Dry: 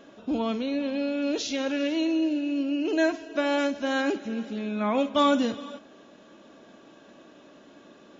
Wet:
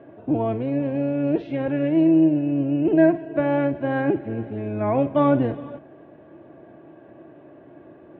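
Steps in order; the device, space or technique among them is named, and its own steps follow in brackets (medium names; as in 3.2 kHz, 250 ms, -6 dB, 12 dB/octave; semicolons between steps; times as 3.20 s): sub-octave bass pedal (octave divider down 1 oct, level -3 dB; cabinet simulation 64–2000 Hz, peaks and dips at 220 Hz -4 dB, 340 Hz +9 dB, 680 Hz +6 dB, 1.3 kHz -8 dB); trim +2 dB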